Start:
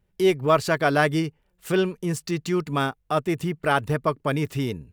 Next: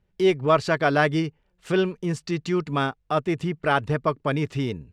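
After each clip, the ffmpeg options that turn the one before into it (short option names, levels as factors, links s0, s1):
-af "lowpass=5700"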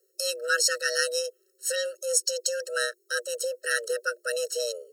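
-af "afreqshift=350,aexciter=amount=11:drive=8.6:freq=4800,afftfilt=real='re*eq(mod(floor(b*sr/1024/640),2),0)':imag='im*eq(mod(floor(b*sr/1024/640),2),0)':win_size=1024:overlap=0.75,volume=0.75"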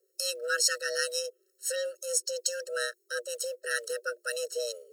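-filter_complex "[0:a]areverse,acompressor=mode=upward:threshold=0.00398:ratio=2.5,areverse,acrusher=bits=8:mode=log:mix=0:aa=0.000001,acrossover=split=1000[s0][s1];[s0]aeval=exprs='val(0)*(1-0.5/2+0.5/2*cos(2*PI*2.2*n/s))':c=same[s2];[s1]aeval=exprs='val(0)*(1-0.5/2-0.5/2*cos(2*PI*2.2*n/s))':c=same[s3];[s2][s3]amix=inputs=2:normalize=0,volume=0.841"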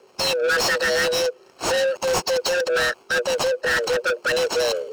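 -filter_complex "[0:a]acrossover=split=570|6000[s0][s1][s2];[s2]acrusher=samples=24:mix=1:aa=0.000001[s3];[s0][s1][s3]amix=inputs=3:normalize=0,asplit=2[s4][s5];[s5]highpass=f=720:p=1,volume=39.8,asoftclip=type=tanh:threshold=0.224[s6];[s4][s6]amix=inputs=2:normalize=0,lowpass=f=5100:p=1,volume=0.501"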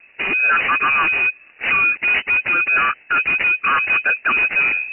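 -af "lowpass=f=2600:t=q:w=0.5098,lowpass=f=2600:t=q:w=0.6013,lowpass=f=2600:t=q:w=0.9,lowpass=f=2600:t=q:w=2.563,afreqshift=-3000,volume=1.68"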